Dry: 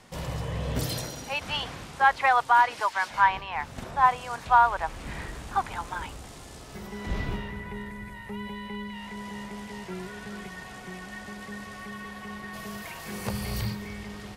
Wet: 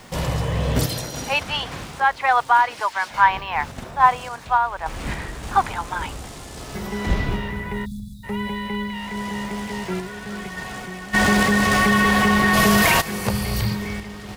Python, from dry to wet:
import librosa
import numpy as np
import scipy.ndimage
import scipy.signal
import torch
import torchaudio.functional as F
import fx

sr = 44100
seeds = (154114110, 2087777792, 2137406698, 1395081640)

p1 = fx.spec_erase(x, sr, start_s=7.85, length_s=0.39, low_hz=260.0, high_hz=3400.0)
p2 = fx.rider(p1, sr, range_db=5, speed_s=0.5)
p3 = p1 + (p2 * librosa.db_to_amplitude(2.5))
p4 = fx.dmg_noise_colour(p3, sr, seeds[0], colour='violet', level_db=-62.0)
p5 = fx.tremolo_random(p4, sr, seeds[1], hz=3.5, depth_pct=55)
y = fx.env_flatten(p5, sr, amount_pct=70, at=(11.13, 13.0), fade=0.02)